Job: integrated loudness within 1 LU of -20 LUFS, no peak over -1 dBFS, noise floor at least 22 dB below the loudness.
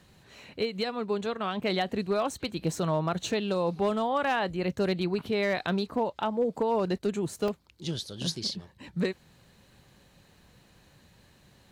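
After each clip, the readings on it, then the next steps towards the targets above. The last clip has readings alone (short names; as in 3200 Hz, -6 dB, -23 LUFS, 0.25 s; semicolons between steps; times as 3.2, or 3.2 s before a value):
clipped 0.4%; flat tops at -19.5 dBFS; dropouts 1; longest dropout 2.4 ms; loudness -30.0 LUFS; peak -19.5 dBFS; loudness target -20.0 LUFS
-> clip repair -19.5 dBFS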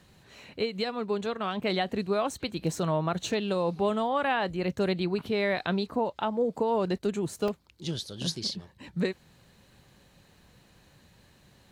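clipped 0.0%; dropouts 1; longest dropout 2.4 ms
-> interpolate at 7.48, 2.4 ms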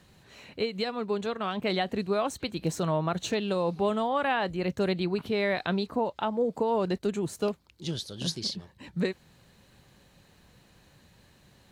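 dropouts 0; loudness -30.0 LUFS; peak -16.5 dBFS; loudness target -20.0 LUFS
-> gain +10 dB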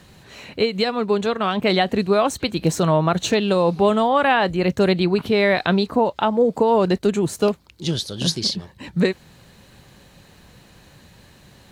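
loudness -20.0 LUFS; peak -6.5 dBFS; noise floor -51 dBFS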